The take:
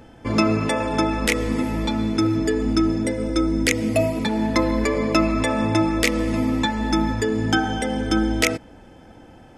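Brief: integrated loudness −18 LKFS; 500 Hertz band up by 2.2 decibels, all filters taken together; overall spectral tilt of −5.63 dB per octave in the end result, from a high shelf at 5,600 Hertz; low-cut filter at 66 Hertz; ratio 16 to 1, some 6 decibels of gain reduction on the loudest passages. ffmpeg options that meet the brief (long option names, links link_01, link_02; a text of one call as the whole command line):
ffmpeg -i in.wav -af "highpass=66,equalizer=frequency=500:width_type=o:gain=3,highshelf=frequency=5600:gain=-4,acompressor=threshold=-19dB:ratio=16,volume=6dB" out.wav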